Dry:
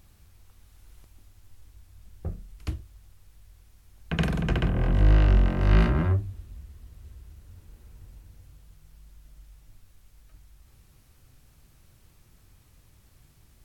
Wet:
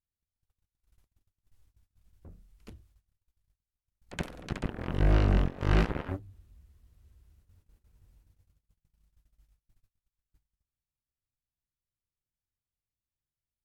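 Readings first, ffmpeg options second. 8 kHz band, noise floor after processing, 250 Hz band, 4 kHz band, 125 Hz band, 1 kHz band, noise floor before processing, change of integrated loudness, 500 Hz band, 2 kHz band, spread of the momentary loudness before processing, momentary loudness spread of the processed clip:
can't be measured, below −85 dBFS, −5.0 dB, −5.0 dB, −7.0 dB, −3.0 dB, −59 dBFS, −5.0 dB, −3.0 dB, −5.0 dB, 19 LU, 14 LU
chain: -af "agate=range=-26dB:threshold=-48dB:ratio=16:detection=peak,aeval=exprs='0.398*(cos(1*acos(clip(val(0)/0.398,-1,1)))-cos(1*PI/2))+0.0794*(cos(7*acos(clip(val(0)/0.398,-1,1)))-cos(7*PI/2))':channel_layout=same,volume=-5.5dB"

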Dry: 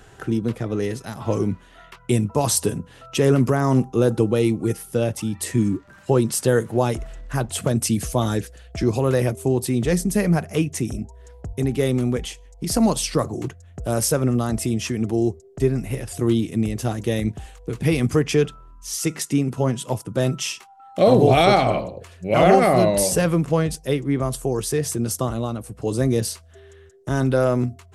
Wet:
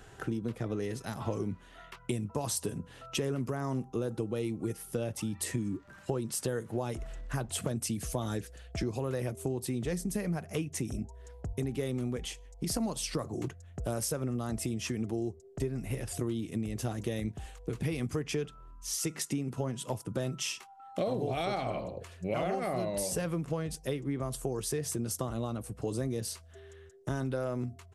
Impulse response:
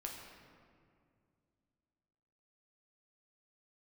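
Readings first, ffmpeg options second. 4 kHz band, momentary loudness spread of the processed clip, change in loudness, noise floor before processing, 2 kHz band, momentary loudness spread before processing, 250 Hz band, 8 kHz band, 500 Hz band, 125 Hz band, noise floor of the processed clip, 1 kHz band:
−11.0 dB, 7 LU, −13.5 dB, −49 dBFS, −13.0 dB, 12 LU, −13.5 dB, −10.0 dB, −14.5 dB, −13.0 dB, −54 dBFS, −15.5 dB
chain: -af "acompressor=threshold=-25dB:ratio=6,aresample=32000,aresample=44100,volume=-5dB"

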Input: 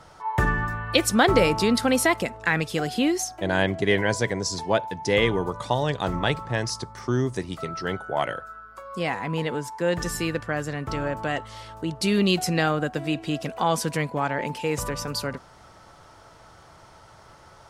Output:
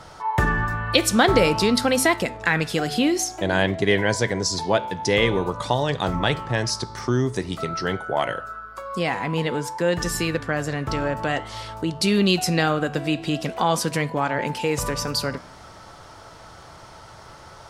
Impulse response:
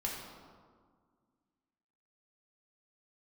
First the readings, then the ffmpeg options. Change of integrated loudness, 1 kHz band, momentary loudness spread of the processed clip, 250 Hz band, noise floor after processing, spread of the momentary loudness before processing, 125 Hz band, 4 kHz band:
+2.5 dB, +2.5 dB, 8 LU, +2.0 dB, −44 dBFS, 10 LU, +2.5 dB, +4.0 dB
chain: -filter_complex "[0:a]equalizer=frequency=4400:width=1.5:gain=2.5,flanger=delay=9.5:depth=7.7:regen=-85:speed=0.5:shape=sinusoidal,asplit=2[link_01][link_02];[link_02]acompressor=threshold=-36dB:ratio=6,volume=0dB[link_03];[link_01][link_03]amix=inputs=2:normalize=0,volume=4.5dB"

